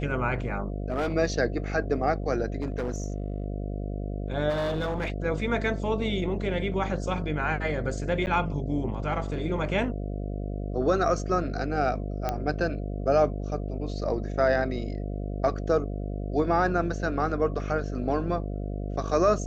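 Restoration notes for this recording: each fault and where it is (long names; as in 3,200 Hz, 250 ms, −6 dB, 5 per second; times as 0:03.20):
mains buzz 50 Hz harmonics 14 −32 dBFS
0:00.88–0:01.14: clipping −23.5 dBFS
0:02.62–0:03.46: clipping −25 dBFS
0:04.49–0:05.12: clipping −24.5 dBFS
0:08.26–0:08.27: drop-out 9.6 ms
0:12.29: click −14 dBFS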